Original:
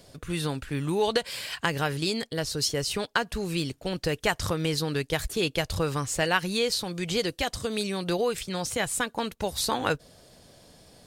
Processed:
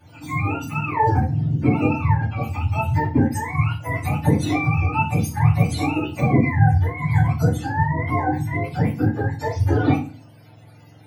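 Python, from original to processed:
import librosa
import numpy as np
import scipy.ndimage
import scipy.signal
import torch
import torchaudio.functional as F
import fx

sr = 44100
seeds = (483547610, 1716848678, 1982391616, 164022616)

y = fx.octave_mirror(x, sr, pivot_hz=610.0)
y = fx.rev_fdn(y, sr, rt60_s=0.35, lf_ratio=1.55, hf_ratio=0.9, size_ms=20.0, drr_db=-7.5)
y = y * 10.0 ** (-2.0 / 20.0)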